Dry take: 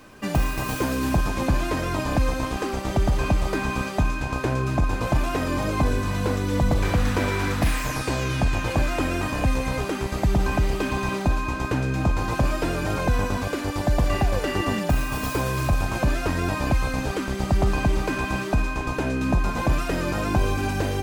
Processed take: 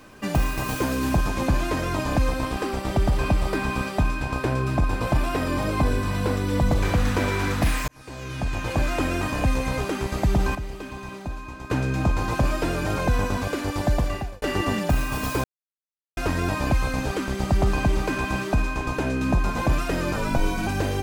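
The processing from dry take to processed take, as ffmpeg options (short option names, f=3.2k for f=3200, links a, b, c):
-filter_complex "[0:a]asettb=1/sr,asplit=3[a][b][c];[a]atrim=end=2.284[d];[b]atrim=start=2.28:end=6.67,asetpts=PTS-STARTPTS,afade=t=in:d=0.004:c=qsin,afade=t=out:st=4.386:d=0.004:c=qsin,bandreject=f=6.5k:w=7.8[e];[c]atrim=start=6.666[f];[d][e]acrossfade=d=0.004:c1=hsin:c2=qsin[g];[g][f]acrossfade=d=0.004:c1=qsin:c2=hsin,asettb=1/sr,asplit=3[h][i][j];[h]atrim=end=20.164[k];[i]atrim=start=20.16:end=20.67,asetpts=PTS-STARTPTS,afade=t=in:d=0.004:c=qsin,afade=t=out:st=0.506:d=0.004:c=qsin,afreqshift=-73[l];[j]atrim=start=20.666[m];[k][l]acrossfade=d=0.004:c1=hsin:c2=qsin[n];[n][m]acrossfade=d=0.004:c1=qsin:c2=hsin,asplit=7[o][p][q][r][s][t][u];[o]atrim=end=7.88,asetpts=PTS-STARTPTS,afade=t=out:st=7.876:d=0.004:c=hsin[v];[p]atrim=start=7.88:end=10.552,asetpts=PTS-STARTPTS,afade=t=in:d=1.03[w];[q]atrim=start=10.548:end=11.702,asetpts=PTS-STARTPTS,volume=-10.5dB[x];[r]atrim=start=11.698:end=14.42,asetpts=PTS-STARTPTS,afade=t=out:st=2.202:d=0.52[y];[s]atrim=start=14.42:end=15.44,asetpts=PTS-STARTPTS,afade=t=in:d=0.004:c=hsin,afade=t=out:st=1.016:d=0.004:c=hsin[z];[t]atrim=start=15.44:end=16.17,asetpts=PTS-STARTPTS,volume=0[aa];[u]atrim=start=16.17,asetpts=PTS-STARTPTS,afade=t=in:d=0.004:c=hsin[ab];[v][w]concat=n=2:v=0:a=1[ac];[ac][x]acrossfade=d=0.004:c1=hsin:c2=hsin[ad];[y][z][aa][ab]concat=n=4:v=0:a=1[ae];[ad][ae]acrossfade=d=0.004:c1=hsin:c2=hsin"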